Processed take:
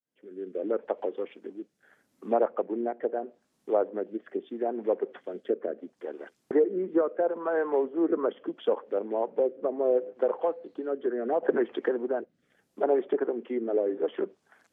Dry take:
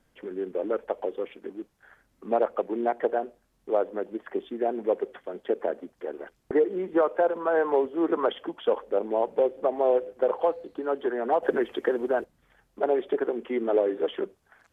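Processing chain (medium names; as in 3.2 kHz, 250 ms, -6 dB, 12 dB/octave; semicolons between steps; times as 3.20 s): fade-in on the opening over 0.71 s; Chebyshev high-pass 240 Hz, order 2; tone controls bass +4 dB, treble +5 dB; low-pass that closes with the level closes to 1.9 kHz, closed at -24 dBFS; rotary cabinet horn 0.75 Hz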